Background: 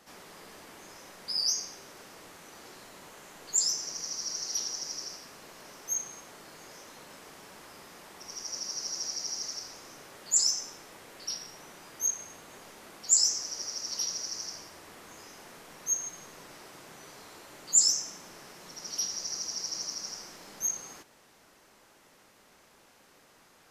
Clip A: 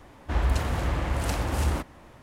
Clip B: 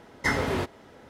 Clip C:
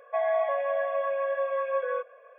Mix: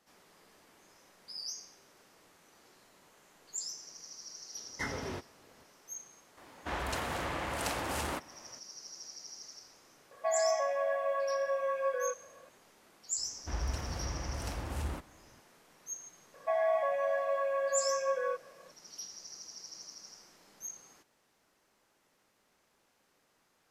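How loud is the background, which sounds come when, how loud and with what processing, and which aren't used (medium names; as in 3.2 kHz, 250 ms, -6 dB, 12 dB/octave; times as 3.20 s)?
background -12.5 dB
4.55 s: add B -12 dB
6.37 s: add A -1.5 dB + high-pass 490 Hz 6 dB/octave
10.11 s: add C -4 dB
13.18 s: add A -11 dB
16.34 s: add C -3.5 dB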